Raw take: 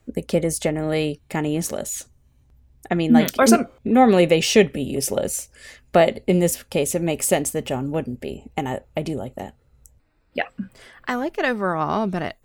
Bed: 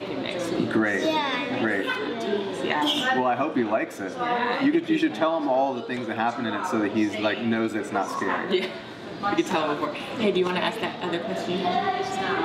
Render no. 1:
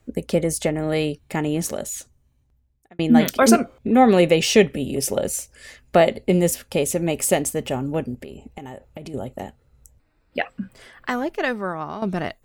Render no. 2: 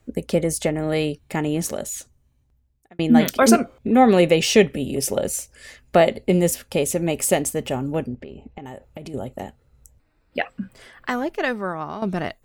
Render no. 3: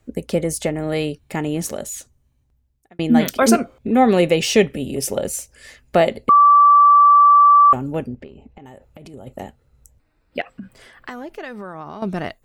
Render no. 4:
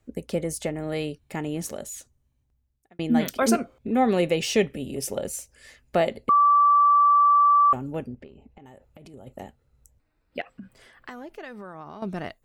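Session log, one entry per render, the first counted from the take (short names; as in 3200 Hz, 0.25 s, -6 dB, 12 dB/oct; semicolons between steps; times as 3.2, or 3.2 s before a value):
1.69–2.99 fade out; 8.14–9.14 compressor 12:1, threshold -31 dBFS; 11.29–12.02 fade out, to -12 dB
8.07–8.66 air absorption 180 m
6.29–7.73 bleep 1160 Hz -7 dBFS; 8.27–9.27 compressor 2.5:1, threshold -38 dBFS; 10.41–12.01 compressor, threshold -28 dBFS
gain -7 dB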